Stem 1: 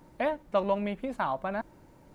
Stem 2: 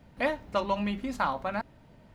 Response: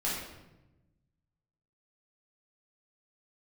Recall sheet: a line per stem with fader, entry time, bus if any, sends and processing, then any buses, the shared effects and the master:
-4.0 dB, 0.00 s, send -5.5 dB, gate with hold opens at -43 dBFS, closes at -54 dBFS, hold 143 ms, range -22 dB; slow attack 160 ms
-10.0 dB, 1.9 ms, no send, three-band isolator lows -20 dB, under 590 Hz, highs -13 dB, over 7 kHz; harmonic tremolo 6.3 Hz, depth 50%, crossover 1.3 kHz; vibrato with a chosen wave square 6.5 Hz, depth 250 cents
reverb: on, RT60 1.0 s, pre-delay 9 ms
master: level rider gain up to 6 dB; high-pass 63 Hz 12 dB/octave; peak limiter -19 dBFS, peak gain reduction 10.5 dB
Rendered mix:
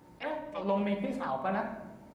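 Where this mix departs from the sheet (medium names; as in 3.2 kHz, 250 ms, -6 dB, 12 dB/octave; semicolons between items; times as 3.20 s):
stem 1: missing gate with hold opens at -43 dBFS, closes at -54 dBFS, hold 143 ms, range -22 dB; master: missing level rider gain up to 6 dB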